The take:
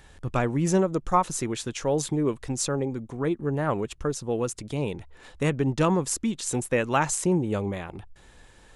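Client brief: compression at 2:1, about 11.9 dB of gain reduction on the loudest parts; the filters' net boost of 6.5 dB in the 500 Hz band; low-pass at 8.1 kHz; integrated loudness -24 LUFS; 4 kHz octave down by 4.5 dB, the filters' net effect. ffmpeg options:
-af "lowpass=8100,equalizer=f=500:t=o:g=8,equalizer=f=4000:t=o:g=-6,acompressor=threshold=0.0158:ratio=2,volume=2.99"

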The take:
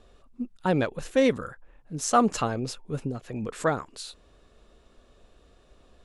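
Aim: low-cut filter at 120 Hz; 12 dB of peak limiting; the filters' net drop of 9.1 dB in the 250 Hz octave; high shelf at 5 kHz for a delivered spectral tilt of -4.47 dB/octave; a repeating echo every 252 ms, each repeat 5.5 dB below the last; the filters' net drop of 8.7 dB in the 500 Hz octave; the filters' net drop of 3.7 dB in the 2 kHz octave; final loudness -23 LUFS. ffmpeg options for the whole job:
-af "highpass=120,equalizer=f=250:t=o:g=-8.5,equalizer=f=500:t=o:g=-8,equalizer=f=2000:t=o:g=-3,highshelf=f=5000:g=-8,alimiter=level_in=1.06:limit=0.0631:level=0:latency=1,volume=0.944,aecho=1:1:252|504|756|1008|1260|1512|1764:0.531|0.281|0.149|0.079|0.0419|0.0222|0.0118,volume=5.01"

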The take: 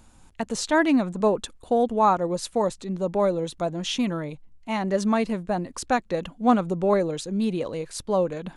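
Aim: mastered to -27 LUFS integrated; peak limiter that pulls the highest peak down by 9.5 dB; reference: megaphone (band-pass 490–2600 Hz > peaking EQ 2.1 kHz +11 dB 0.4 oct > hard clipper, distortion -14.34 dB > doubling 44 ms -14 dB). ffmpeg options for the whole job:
-filter_complex "[0:a]alimiter=limit=0.141:level=0:latency=1,highpass=490,lowpass=2600,equalizer=f=2100:t=o:w=0.4:g=11,asoftclip=type=hard:threshold=0.0708,asplit=2[s0][s1];[s1]adelay=44,volume=0.2[s2];[s0][s2]amix=inputs=2:normalize=0,volume=1.78"

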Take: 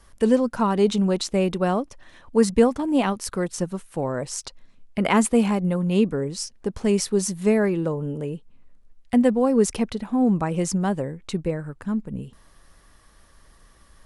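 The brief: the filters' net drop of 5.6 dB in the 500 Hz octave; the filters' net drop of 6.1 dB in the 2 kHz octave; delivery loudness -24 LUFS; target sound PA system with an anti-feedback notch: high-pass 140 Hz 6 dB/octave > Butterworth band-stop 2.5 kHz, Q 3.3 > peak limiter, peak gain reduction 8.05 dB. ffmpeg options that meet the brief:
-af "highpass=f=140:p=1,asuperstop=centerf=2500:order=8:qfactor=3.3,equalizer=f=500:t=o:g=-6,equalizer=f=2000:t=o:g=-5.5,volume=1.68,alimiter=limit=0.224:level=0:latency=1"

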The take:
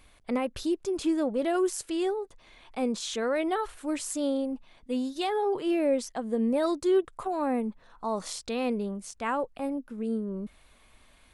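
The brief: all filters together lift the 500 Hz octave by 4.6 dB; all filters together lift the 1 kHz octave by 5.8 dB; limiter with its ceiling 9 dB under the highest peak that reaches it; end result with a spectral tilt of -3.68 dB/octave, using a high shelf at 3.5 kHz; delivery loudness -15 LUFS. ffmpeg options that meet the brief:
-af "equalizer=f=500:t=o:g=4.5,equalizer=f=1000:t=o:g=5.5,highshelf=f=3500:g=6,volume=5.62,alimiter=limit=0.501:level=0:latency=1"

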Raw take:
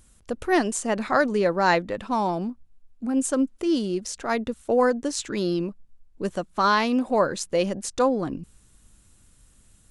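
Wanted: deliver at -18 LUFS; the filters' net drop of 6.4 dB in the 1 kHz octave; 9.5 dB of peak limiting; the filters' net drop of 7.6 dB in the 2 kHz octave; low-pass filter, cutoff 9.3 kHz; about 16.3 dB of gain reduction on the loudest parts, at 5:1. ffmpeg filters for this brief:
-af "lowpass=9300,equalizer=f=1000:t=o:g=-6.5,equalizer=f=2000:t=o:g=-7.5,acompressor=threshold=0.0126:ratio=5,volume=17.8,alimiter=limit=0.398:level=0:latency=1"

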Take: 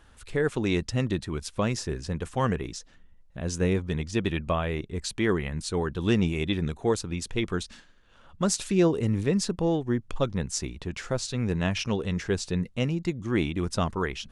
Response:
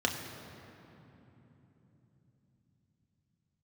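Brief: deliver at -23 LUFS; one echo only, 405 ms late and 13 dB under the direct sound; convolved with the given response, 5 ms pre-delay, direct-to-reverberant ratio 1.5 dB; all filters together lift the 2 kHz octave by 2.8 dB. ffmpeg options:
-filter_complex "[0:a]equalizer=f=2000:t=o:g=3.5,aecho=1:1:405:0.224,asplit=2[s0][s1];[1:a]atrim=start_sample=2205,adelay=5[s2];[s1][s2]afir=irnorm=-1:irlink=0,volume=0.316[s3];[s0][s3]amix=inputs=2:normalize=0,volume=1.19"

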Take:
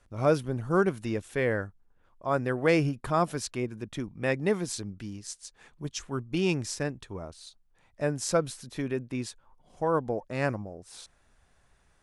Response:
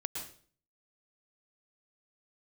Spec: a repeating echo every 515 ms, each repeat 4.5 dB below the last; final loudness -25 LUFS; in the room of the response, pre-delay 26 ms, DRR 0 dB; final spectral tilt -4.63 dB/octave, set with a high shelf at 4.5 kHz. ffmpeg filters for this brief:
-filter_complex "[0:a]highshelf=f=4500:g=7,aecho=1:1:515|1030|1545|2060|2575|3090|3605|4120|4635:0.596|0.357|0.214|0.129|0.0772|0.0463|0.0278|0.0167|0.01,asplit=2[s0][s1];[1:a]atrim=start_sample=2205,adelay=26[s2];[s1][s2]afir=irnorm=-1:irlink=0,volume=0.891[s3];[s0][s3]amix=inputs=2:normalize=0,volume=1.06"

